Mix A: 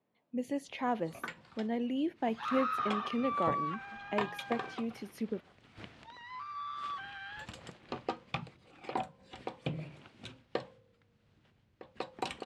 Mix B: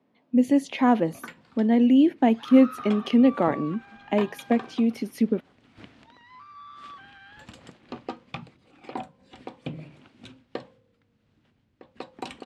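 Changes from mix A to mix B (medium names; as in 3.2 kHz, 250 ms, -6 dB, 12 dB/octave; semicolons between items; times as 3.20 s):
speech +10.0 dB; second sound -4.5 dB; master: add peaking EQ 260 Hz +8 dB 0.5 oct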